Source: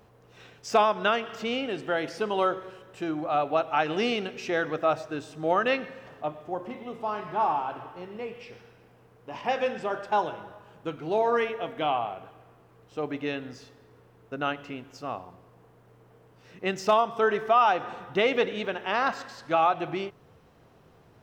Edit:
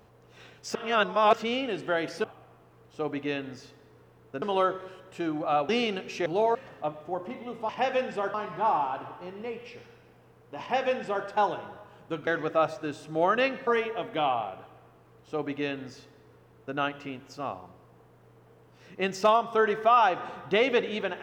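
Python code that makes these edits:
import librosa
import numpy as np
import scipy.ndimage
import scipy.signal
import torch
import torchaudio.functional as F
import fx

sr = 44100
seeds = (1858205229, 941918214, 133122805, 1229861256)

y = fx.edit(x, sr, fx.reverse_span(start_s=0.75, length_s=0.58),
    fx.cut(start_s=3.51, length_s=0.47),
    fx.swap(start_s=4.55, length_s=1.4, other_s=11.02, other_length_s=0.29),
    fx.duplicate(start_s=9.36, length_s=0.65, to_s=7.09),
    fx.duplicate(start_s=12.22, length_s=2.18, to_s=2.24), tone=tone)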